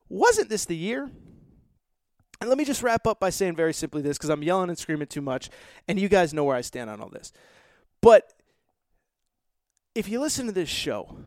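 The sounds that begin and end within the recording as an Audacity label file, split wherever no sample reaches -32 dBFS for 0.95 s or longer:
2.340000	8.200000	sound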